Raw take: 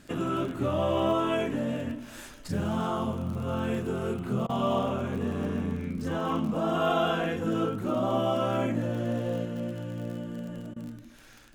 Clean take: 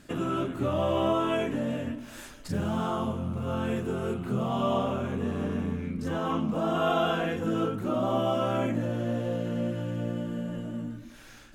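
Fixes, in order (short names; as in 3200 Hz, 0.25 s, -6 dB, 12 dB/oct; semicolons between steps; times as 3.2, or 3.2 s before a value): de-click; interpolate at 4.47/10.74, 21 ms; gain correction +3.5 dB, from 9.45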